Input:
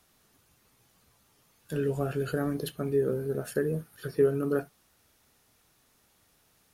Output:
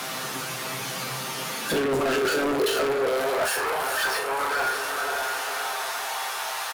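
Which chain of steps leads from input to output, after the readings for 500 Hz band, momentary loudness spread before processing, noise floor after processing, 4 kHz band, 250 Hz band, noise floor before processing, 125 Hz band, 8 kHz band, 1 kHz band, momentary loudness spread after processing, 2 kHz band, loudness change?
+4.0 dB, 9 LU, −32 dBFS, +21.5 dB, +1.0 dB, −67 dBFS, −6.5 dB, +19.0 dB, +19.0 dB, 7 LU, +18.5 dB, +4.0 dB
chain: high-pass filter 100 Hz 12 dB per octave
mains-hum notches 50/100/150/200/250/300/350/400/450 Hz
compressor whose output falls as the input rises −36 dBFS, ratio −1
tuned comb filter 130 Hz, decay 0.24 s, harmonics all, mix 80%
feedback delay with all-pass diffusion 521 ms, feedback 43%, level −12.5 dB
mid-hump overdrive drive 37 dB, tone 3,600 Hz, clips at −25 dBFS
high-pass filter sweep 140 Hz → 840 Hz, 0:01.19–0:03.65
leveller curve on the samples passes 3
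double-tracking delay 37 ms −11.5 dB

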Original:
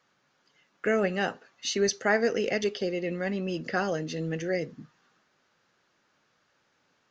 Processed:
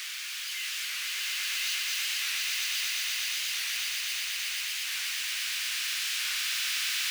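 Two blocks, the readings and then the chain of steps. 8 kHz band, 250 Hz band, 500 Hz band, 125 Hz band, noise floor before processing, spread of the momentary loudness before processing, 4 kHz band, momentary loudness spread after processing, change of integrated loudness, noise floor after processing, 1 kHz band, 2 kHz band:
can't be measured, below −40 dB, below −40 dB, below −40 dB, −71 dBFS, 7 LU, +12.0 dB, 4 LU, 0.0 dB, −37 dBFS, −11.0 dB, +2.5 dB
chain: sign of each sample alone
four-pole ladder high-pass 2,000 Hz, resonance 35%
on a send: echo that builds up and dies away 120 ms, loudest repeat 8, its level −4.5 dB
on the sum: transient designer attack −7 dB, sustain +1 dB
wow of a warped record 45 rpm, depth 100 cents
level +3 dB

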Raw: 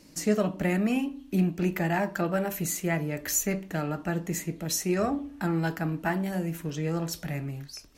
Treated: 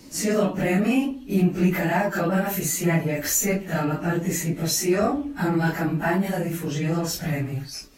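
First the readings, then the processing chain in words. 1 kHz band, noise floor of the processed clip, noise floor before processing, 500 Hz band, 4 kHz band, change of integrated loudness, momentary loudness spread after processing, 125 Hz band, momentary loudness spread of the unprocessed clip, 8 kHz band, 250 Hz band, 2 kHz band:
+5.5 dB, −39 dBFS, −50 dBFS, +5.5 dB, +6.5 dB, +5.5 dB, 5 LU, +5.5 dB, 6 LU, +5.5 dB, +5.0 dB, +6.0 dB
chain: random phases in long frames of 100 ms
in parallel at −2 dB: brickwall limiter −25.5 dBFS, peak gain reduction 11.5 dB
on the sum: level +2.5 dB

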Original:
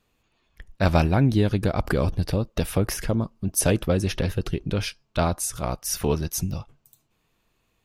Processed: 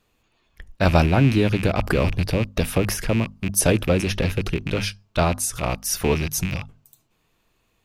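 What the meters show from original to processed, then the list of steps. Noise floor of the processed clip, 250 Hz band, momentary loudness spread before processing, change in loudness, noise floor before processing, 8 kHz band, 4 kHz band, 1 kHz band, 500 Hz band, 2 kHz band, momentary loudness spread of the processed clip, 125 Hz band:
−68 dBFS, +2.5 dB, 9 LU, +2.5 dB, −71 dBFS, +3.0 dB, +4.0 dB, +3.0 dB, +3.0 dB, +6.0 dB, 8 LU, +2.0 dB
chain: loose part that buzzes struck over −32 dBFS, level −22 dBFS
mains-hum notches 50/100/150/200/250 Hz
level +3 dB

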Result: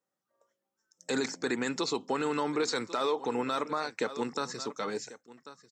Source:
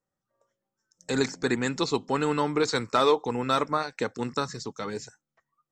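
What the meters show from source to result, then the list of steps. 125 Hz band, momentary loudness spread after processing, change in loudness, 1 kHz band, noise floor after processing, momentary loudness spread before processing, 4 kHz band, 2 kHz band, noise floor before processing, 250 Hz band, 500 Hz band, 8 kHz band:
−11.5 dB, 12 LU, −5.0 dB, −5.5 dB, below −85 dBFS, 12 LU, −4.0 dB, −4.0 dB, below −85 dBFS, −4.5 dB, −5.0 dB, −1.5 dB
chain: high-pass filter 230 Hz 12 dB per octave
single-tap delay 1,091 ms −20 dB
brickwall limiter −20.5 dBFS, peak gain reduction 10 dB

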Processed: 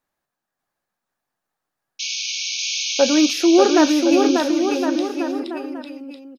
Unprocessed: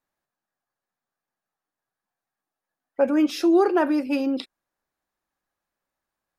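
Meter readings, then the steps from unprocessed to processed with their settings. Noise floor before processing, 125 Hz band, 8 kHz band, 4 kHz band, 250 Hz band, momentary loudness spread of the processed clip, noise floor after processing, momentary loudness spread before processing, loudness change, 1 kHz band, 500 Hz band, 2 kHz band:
below −85 dBFS, can't be measured, +23.0 dB, +18.0 dB, +6.5 dB, 15 LU, −83 dBFS, 14 LU, +4.0 dB, +6.0 dB, +6.0 dB, +9.0 dB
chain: sound drawn into the spectrogram noise, 0:01.99–0:03.34, 2,200–6,700 Hz −30 dBFS
bouncing-ball delay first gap 590 ms, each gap 0.8×, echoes 5
level +4 dB

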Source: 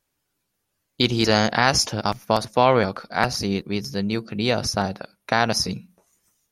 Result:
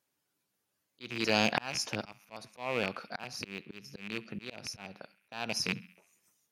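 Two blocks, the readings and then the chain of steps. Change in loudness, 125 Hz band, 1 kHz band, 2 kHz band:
−13.0 dB, −18.0 dB, −17.0 dB, −10.5 dB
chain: loose part that buzzes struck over −26 dBFS, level −9 dBFS
high-pass filter 140 Hz 12 dB per octave
feedback echo with a band-pass in the loop 67 ms, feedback 58%, band-pass 2,200 Hz, level −22 dB
volume swells 591 ms
level −5 dB

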